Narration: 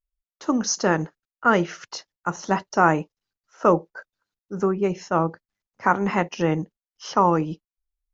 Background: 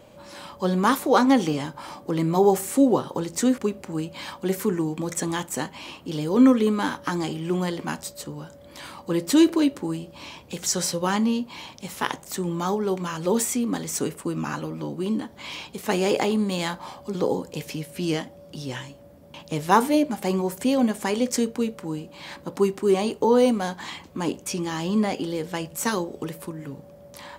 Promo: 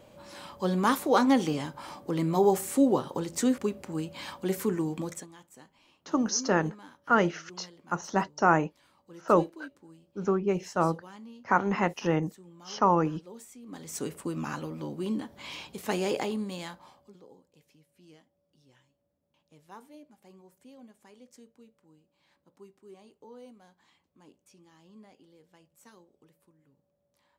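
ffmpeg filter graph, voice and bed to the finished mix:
ffmpeg -i stem1.wav -i stem2.wav -filter_complex "[0:a]adelay=5650,volume=-4.5dB[link_01];[1:a]volume=14.5dB,afade=type=out:start_time=5:duration=0.27:silence=0.1,afade=type=in:start_time=13.62:duration=0.56:silence=0.112202,afade=type=out:start_time=15.84:duration=1.38:silence=0.0562341[link_02];[link_01][link_02]amix=inputs=2:normalize=0" out.wav

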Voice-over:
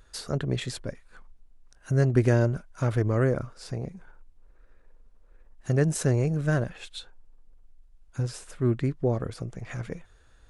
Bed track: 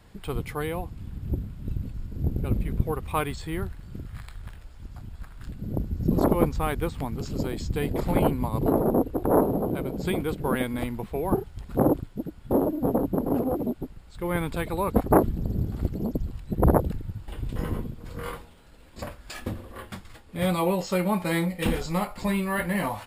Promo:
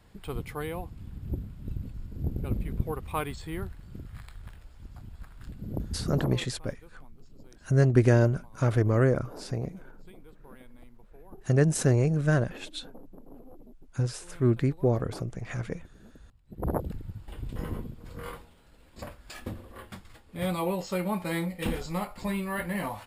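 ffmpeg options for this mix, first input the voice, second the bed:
ffmpeg -i stem1.wav -i stem2.wav -filter_complex "[0:a]adelay=5800,volume=1dB[link_01];[1:a]volume=16dB,afade=type=out:start_time=5.92:duration=0.52:silence=0.0891251,afade=type=in:start_time=16.43:duration=0.55:silence=0.0944061[link_02];[link_01][link_02]amix=inputs=2:normalize=0" out.wav

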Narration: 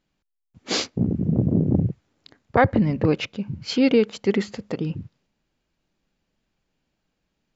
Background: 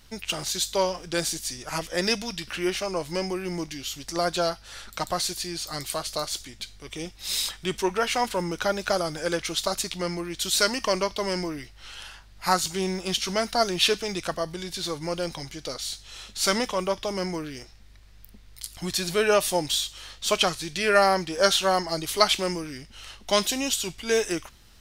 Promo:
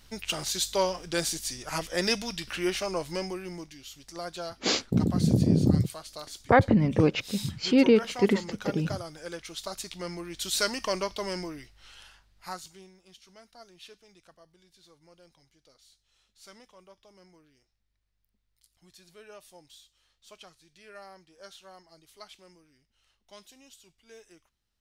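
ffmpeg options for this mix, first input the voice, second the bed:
ffmpeg -i stem1.wav -i stem2.wav -filter_complex "[0:a]adelay=3950,volume=-2dB[link_01];[1:a]volume=5dB,afade=type=out:start_time=2.93:duration=0.78:silence=0.316228,afade=type=in:start_time=9.49:duration=1.03:silence=0.446684,afade=type=out:start_time=11.17:duration=1.74:silence=0.0707946[link_02];[link_01][link_02]amix=inputs=2:normalize=0" out.wav

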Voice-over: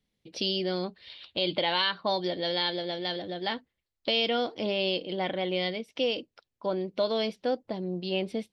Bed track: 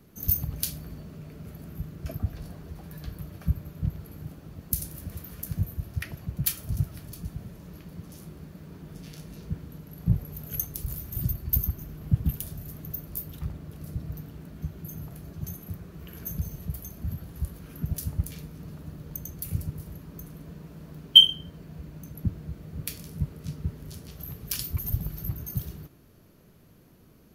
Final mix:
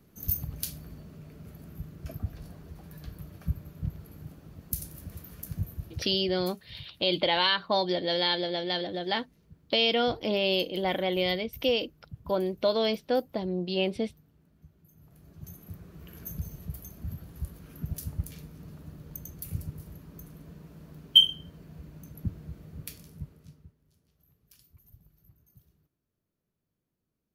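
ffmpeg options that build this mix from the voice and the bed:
ffmpeg -i stem1.wav -i stem2.wav -filter_complex "[0:a]adelay=5650,volume=2dB[link_01];[1:a]volume=12dB,afade=type=out:start_time=5.84:duration=0.64:silence=0.149624,afade=type=in:start_time=14.95:duration=0.97:silence=0.149624,afade=type=out:start_time=22.59:duration=1.15:silence=0.0668344[link_02];[link_01][link_02]amix=inputs=2:normalize=0" out.wav

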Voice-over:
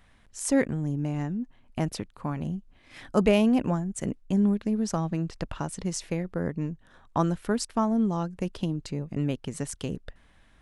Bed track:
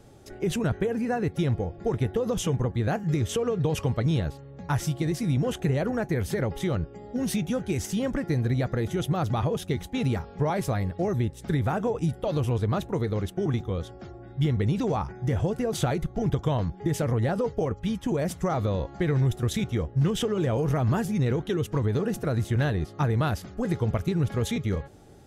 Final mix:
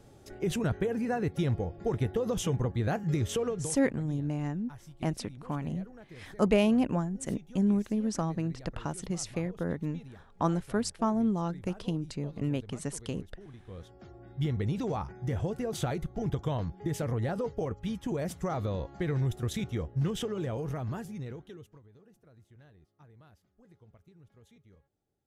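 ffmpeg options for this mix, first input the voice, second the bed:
ffmpeg -i stem1.wav -i stem2.wav -filter_complex "[0:a]adelay=3250,volume=-3dB[link_01];[1:a]volume=13.5dB,afade=type=out:start_time=3.42:duration=0.35:silence=0.105925,afade=type=in:start_time=13.57:duration=0.69:silence=0.141254,afade=type=out:start_time=20.03:duration=1.79:silence=0.0473151[link_02];[link_01][link_02]amix=inputs=2:normalize=0" out.wav

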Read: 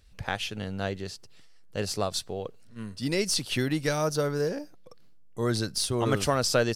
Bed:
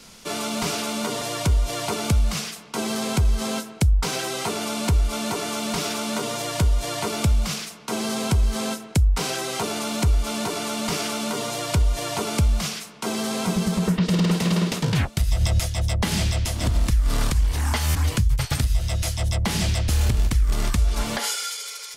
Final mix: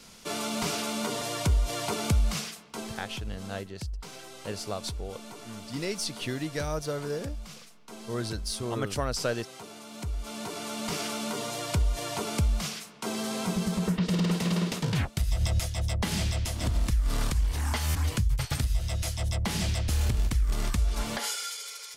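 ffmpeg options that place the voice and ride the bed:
ffmpeg -i stem1.wav -i stem2.wav -filter_complex "[0:a]adelay=2700,volume=-5.5dB[link_01];[1:a]volume=7.5dB,afade=type=out:start_time=2.34:duration=0.71:silence=0.211349,afade=type=in:start_time=9.88:duration=1.15:silence=0.251189[link_02];[link_01][link_02]amix=inputs=2:normalize=0" out.wav

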